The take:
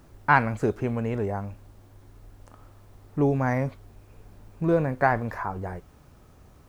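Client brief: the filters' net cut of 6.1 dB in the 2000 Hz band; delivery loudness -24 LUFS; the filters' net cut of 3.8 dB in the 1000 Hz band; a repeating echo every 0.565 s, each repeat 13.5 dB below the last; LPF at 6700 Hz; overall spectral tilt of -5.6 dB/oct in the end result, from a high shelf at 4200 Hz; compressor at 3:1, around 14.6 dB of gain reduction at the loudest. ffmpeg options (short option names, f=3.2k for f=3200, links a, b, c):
-af "lowpass=6.7k,equalizer=f=1k:t=o:g=-3.5,equalizer=f=2k:t=o:g=-8,highshelf=f=4.2k:g=5,acompressor=threshold=-39dB:ratio=3,aecho=1:1:565|1130:0.211|0.0444,volume=17dB"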